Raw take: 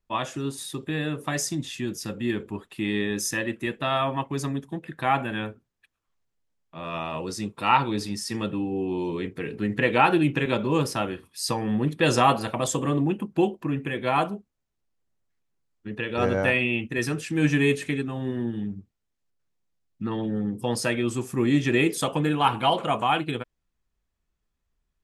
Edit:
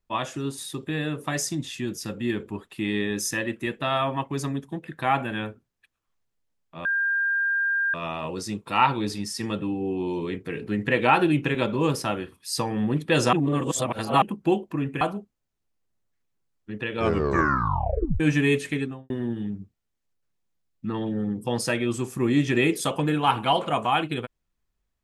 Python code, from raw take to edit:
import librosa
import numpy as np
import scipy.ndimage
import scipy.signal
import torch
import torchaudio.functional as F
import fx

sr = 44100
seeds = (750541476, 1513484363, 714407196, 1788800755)

y = fx.studio_fade_out(x, sr, start_s=17.98, length_s=0.29)
y = fx.edit(y, sr, fx.insert_tone(at_s=6.85, length_s=1.09, hz=1600.0, db=-21.0),
    fx.reverse_span(start_s=12.24, length_s=0.89),
    fx.cut(start_s=13.92, length_s=0.26),
    fx.tape_stop(start_s=16.12, length_s=1.25), tone=tone)